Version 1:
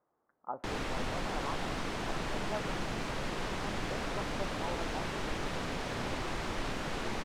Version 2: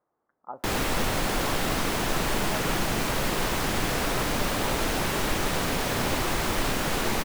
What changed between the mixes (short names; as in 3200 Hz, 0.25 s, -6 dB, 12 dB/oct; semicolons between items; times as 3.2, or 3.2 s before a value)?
background +9.0 dB; master: remove air absorption 73 m